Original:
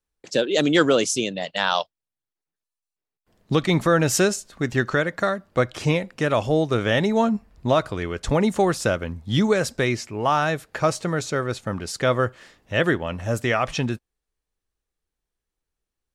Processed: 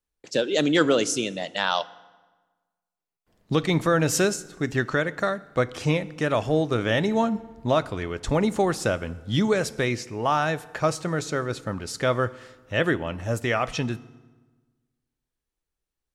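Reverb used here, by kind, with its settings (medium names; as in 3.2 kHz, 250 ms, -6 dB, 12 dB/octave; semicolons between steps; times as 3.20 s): FDN reverb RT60 1.3 s, low-frequency decay 1.2×, high-frequency decay 0.75×, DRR 16.5 dB; trim -2.5 dB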